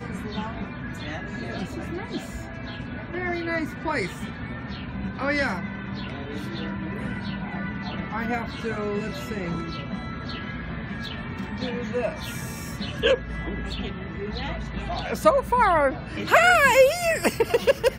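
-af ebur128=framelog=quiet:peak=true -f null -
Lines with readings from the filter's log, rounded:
Integrated loudness:
  I:         -26.1 LUFS
  Threshold: -36.1 LUFS
Loudness range:
  LRA:        10.9 LU
  Threshold: -47.2 LUFS
  LRA low:   -31.4 LUFS
  LRA high:  -20.5 LUFS
True peak:
  Peak:       -3.9 dBFS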